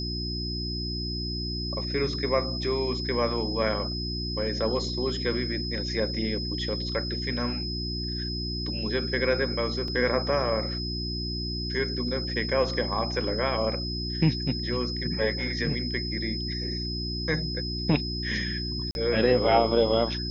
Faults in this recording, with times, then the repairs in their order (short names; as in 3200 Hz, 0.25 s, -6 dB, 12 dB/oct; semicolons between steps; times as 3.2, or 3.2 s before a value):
hum 60 Hz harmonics 6 -33 dBFS
tone 5100 Hz -33 dBFS
9.88 gap 2.4 ms
18.91–18.95 gap 41 ms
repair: notch 5100 Hz, Q 30; de-hum 60 Hz, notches 6; interpolate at 9.88, 2.4 ms; interpolate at 18.91, 41 ms